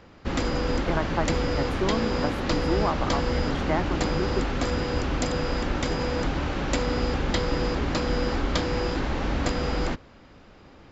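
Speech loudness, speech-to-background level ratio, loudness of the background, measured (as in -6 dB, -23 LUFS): -31.5 LUFS, -4.5 dB, -27.0 LUFS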